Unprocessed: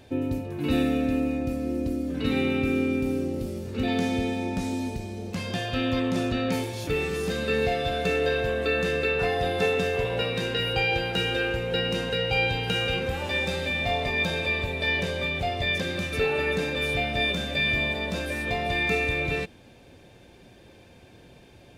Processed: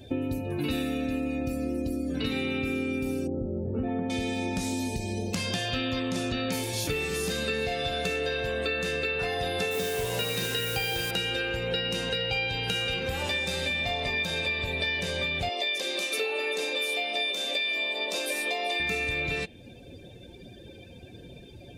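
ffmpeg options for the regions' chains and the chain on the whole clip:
ffmpeg -i in.wav -filter_complex "[0:a]asettb=1/sr,asplit=3[link_01][link_02][link_03];[link_01]atrim=end=3.274[link_04];[link_02]atrim=start=3.27:end=4.1,asetpts=PTS-STARTPTS,afade=type=in:duration=0.004:curve=qsin,afade=type=out:start_time=0.826:duration=0.004:curve=qsin,lowpass=1100,aemphasis=mode=reproduction:type=50fm[link_05];[link_03]atrim=start=4.096[link_06];[link_04][link_05]acrossfade=duration=0.004:curve1=hsin:curve2=qsin[link_07];[link_07][link_06]acrossfade=duration=0.004:curve1=qsin:curve2=hsin,asettb=1/sr,asplit=3[link_08][link_09][link_10];[link_08]atrim=end=9.714[link_11];[link_09]atrim=start=9.71:end=11.11,asetpts=PTS-STARTPTS,afade=type=in:duration=0.004:curve=qsin,afade=type=out:start_time=1.396:duration=0.004:curve=qsin,acrusher=bits=5:mix=0:aa=0.5,asplit=2[link_12][link_13];[link_13]adelay=41,volume=-6dB[link_14];[link_12][link_14]amix=inputs=2:normalize=0,atrim=end_sample=61740[link_15];[link_10]atrim=start=11.106[link_16];[link_11][link_15]acrossfade=duration=0.004:curve1=hsin:curve2=qsin[link_17];[link_17][link_16]acrossfade=duration=0.004:curve1=qsin:curve2=hsin,asettb=1/sr,asplit=3[link_18][link_19][link_20];[link_18]atrim=end=15.494[link_21];[link_19]atrim=start=15.49:end=18.8,asetpts=PTS-STARTPTS,afade=type=in:duration=0.004:curve=qsin,afade=type=out:start_time=3.306:duration=0.004:curve=qsin,highpass=frequency=330:width=0.5412,highpass=frequency=330:width=1.3066,equalizer=frequency=1600:width_type=o:width=0.5:gain=-8[link_22];[link_20]atrim=start=18.796[link_23];[link_21][link_22]acrossfade=duration=0.004:curve1=hsin:curve2=qsin[link_24];[link_24][link_23]acrossfade=duration=0.004:curve1=qsin:curve2=hsin,highshelf=frequency=3400:gain=12,afftdn=noise_reduction=18:noise_floor=-47,acompressor=threshold=-34dB:ratio=6,volume=6.5dB" out.wav

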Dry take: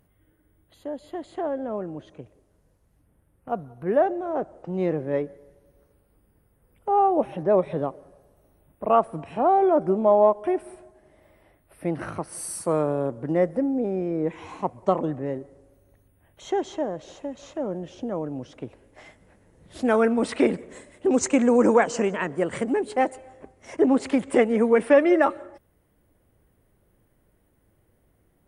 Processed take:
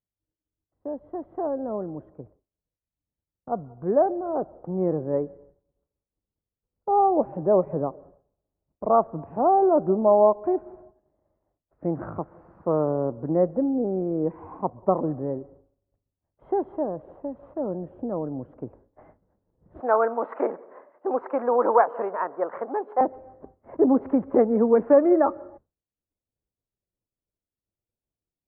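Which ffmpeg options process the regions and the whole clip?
ffmpeg -i in.wav -filter_complex "[0:a]asettb=1/sr,asplit=3[link_01][link_02][link_03];[link_01]atrim=end=19.804[link_04];[link_02]atrim=start=19.8:end=23.01,asetpts=PTS-STARTPTS,afade=type=in:duration=0.004:curve=qsin,afade=type=out:start_time=3.206:duration=0.004:curve=qsin,highpass=620,equalizer=frequency=1100:width=0.57:gain=7[link_05];[link_03]atrim=start=23.006[link_06];[link_04][link_05]acrossfade=duration=0.004:curve1=hsin:curve2=qsin[link_07];[link_07][link_06]acrossfade=duration=0.004:curve1=qsin:curve2=hsin,agate=range=-33dB:threshold=-46dB:ratio=3:detection=peak,lowpass=frequency=1200:width=0.5412,lowpass=frequency=1200:width=1.3066,aemphasis=mode=reproduction:type=50fm" out.wav

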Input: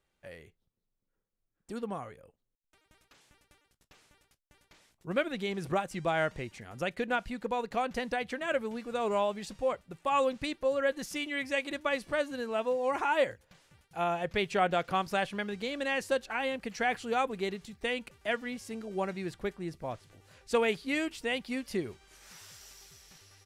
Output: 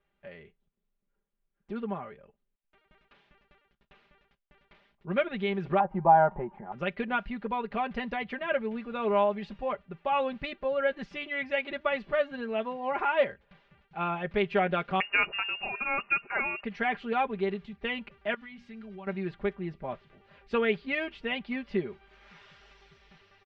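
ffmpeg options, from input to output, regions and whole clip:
ffmpeg -i in.wav -filter_complex "[0:a]asettb=1/sr,asplit=3[link_01][link_02][link_03];[link_01]atrim=end=5.804[link_04];[link_02]atrim=start=5.8:end=6.72,asetpts=PTS-STARTPTS,afade=type=in:duration=0.004:curve=qsin,afade=type=out:start_time=0.916:duration=0.004:curve=qsin,lowpass=frequency=880:width_type=q:width=9.8,aecho=1:1:5.6:0.33,atrim=end_sample=40572[link_05];[link_03]atrim=start=6.716[link_06];[link_04][link_05]acrossfade=duration=0.004:curve1=hsin:curve2=qsin[link_07];[link_07][link_06]acrossfade=duration=0.004:curve1=qsin:curve2=hsin,asettb=1/sr,asplit=3[link_08][link_09][link_10];[link_08]atrim=end=15.004[link_11];[link_09]atrim=start=15:end=16.64,asetpts=PTS-STARTPTS,afade=type=in:duration=0.004:curve=qsin,afade=type=out:start_time=1.636:duration=0.004:curve=qsin,highpass=150,aemphasis=mode=production:type=75kf,lowpass=frequency=2600:width_type=q:width=0.5098,lowpass=frequency=2600:width_type=q:width=0.6013,lowpass=frequency=2600:width_type=q:width=0.9,lowpass=frequency=2600:width_type=q:width=2.563,afreqshift=-3000[link_12];[link_10]atrim=start=16.636[link_13];[link_11][link_12]acrossfade=duration=0.004:curve1=hsin:curve2=qsin[link_14];[link_14][link_13]acrossfade=duration=0.004:curve1=qsin:curve2=hsin,asettb=1/sr,asplit=3[link_15][link_16][link_17];[link_15]atrim=end=18.344[link_18];[link_16]atrim=start=18.34:end=19.07,asetpts=PTS-STARTPTS,afade=type=in:duration=0.004:curve=qsin,afade=type=out:start_time=0.726:duration=0.004:curve=qsin,equalizer=frequency=490:width=0.72:gain=-12,bandreject=frequency=60:width_type=h:width=6,bandreject=frequency=120:width_type=h:width=6,bandreject=frequency=180:width_type=h:width=6,bandreject=frequency=240:width_type=h:width=6,bandreject=frequency=300:width_type=h:width=6,bandreject=frequency=360:width_type=h:width=6,acompressor=threshold=-44dB:ratio=5:attack=3.2:release=140:knee=1:detection=peak[link_19];[link_17]atrim=start=19.066[link_20];[link_18][link_19]acrossfade=duration=0.004:curve1=hsin:curve2=qsin[link_21];[link_21][link_20]acrossfade=duration=0.004:curve1=qsin:curve2=hsin,lowpass=frequency=3200:width=0.5412,lowpass=frequency=3200:width=1.3066,aecho=1:1:5:0.71" out.wav

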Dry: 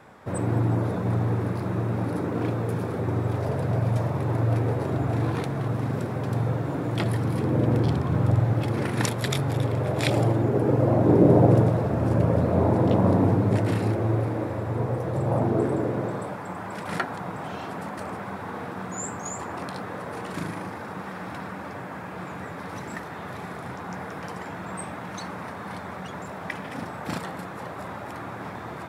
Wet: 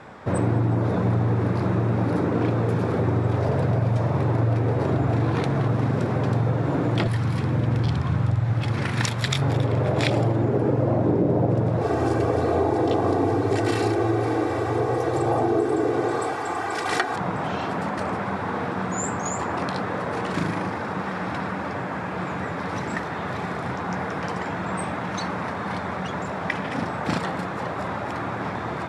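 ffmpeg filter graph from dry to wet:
ffmpeg -i in.wav -filter_complex "[0:a]asettb=1/sr,asplit=3[link_01][link_02][link_03];[link_01]atrim=end=7.074[link_04];[link_02]atrim=start=7.07:end=9.42,asetpts=PTS-STARTPTS,afade=type=in:duration=0.004:curve=qsin,afade=type=out:start_time=2.346:duration=0.004:curve=qsin,highpass=47,equalizer=frequency=400:width=0.55:gain=-11[link_05];[link_03]atrim=start=9.416[link_06];[link_04][link_05]acrossfade=duration=0.004:curve1=hsin:curve2=qsin[link_07];[link_07][link_06]acrossfade=duration=0.004:curve1=qsin:curve2=hsin,asettb=1/sr,asplit=3[link_08][link_09][link_10];[link_08]atrim=end=11.814[link_11];[link_09]atrim=start=11.81:end=17.16,asetpts=PTS-STARTPTS,afade=type=in:duration=0.004:curve=qsin,afade=type=out:start_time=5.346:duration=0.004:curve=qsin,bass=frequency=250:gain=-8,treble=frequency=4000:gain=8,aecho=1:1:2.6:0.69,atrim=end_sample=235935[link_12];[link_10]atrim=start=17.156[link_13];[link_11][link_12]acrossfade=duration=0.004:curve1=hsin:curve2=qsin[link_14];[link_14][link_13]acrossfade=duration=0.004:curve1=qsin:curve2=hsin,lowpass=6600,acompressor=threshold=-25dB:ratio=6,volume=7dB" out.wav

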